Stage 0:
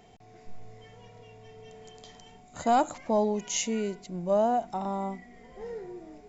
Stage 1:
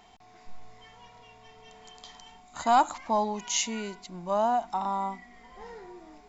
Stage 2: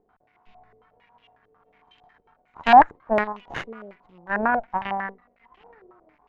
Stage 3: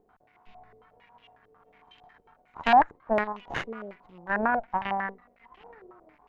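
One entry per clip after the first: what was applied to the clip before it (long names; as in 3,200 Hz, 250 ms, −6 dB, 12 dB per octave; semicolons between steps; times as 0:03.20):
octave-band graphic EQ 125/500/1,000/4,000 Hz −11/−10/+10/+5 dB
half-wave rectification; harmonic generator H 2 −11 dB, 7 −20 dB, 8 −30 dB, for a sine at −12 dBFS; low-pass on a step sequencer 11 Hz 450–2,900 Hz; level +4 dB
downward compressor 1.5 to 1, threshold −31 dBFS, peak gain reduction 8.5 dB; level +1.5 dB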